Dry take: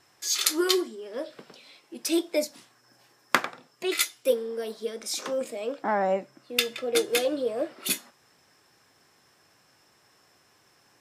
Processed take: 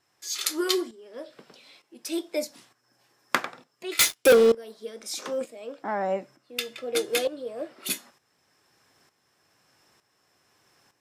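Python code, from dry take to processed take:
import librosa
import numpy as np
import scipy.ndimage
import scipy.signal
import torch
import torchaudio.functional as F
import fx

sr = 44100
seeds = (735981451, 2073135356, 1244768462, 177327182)

y = fx.leveller(x, sr, passes=5, at=(3.99, 4.52))
y = fx.tremolo_shape(y, sr, shape='saw_up', hz=1.1, depth_pct=70)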